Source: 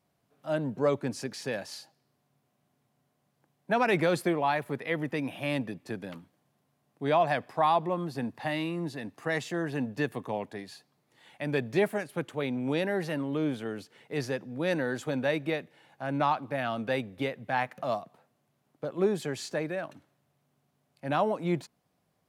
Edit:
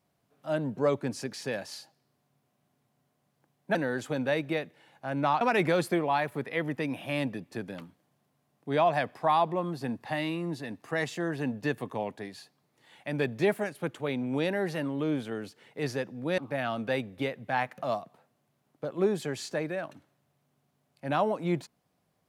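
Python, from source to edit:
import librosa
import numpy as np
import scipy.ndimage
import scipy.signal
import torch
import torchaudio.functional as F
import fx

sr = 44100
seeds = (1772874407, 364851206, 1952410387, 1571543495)

y = fx.edit(x, sr, fx.move(start_s=14.72, length_s=1.66, to_s=3.75), tone=tone)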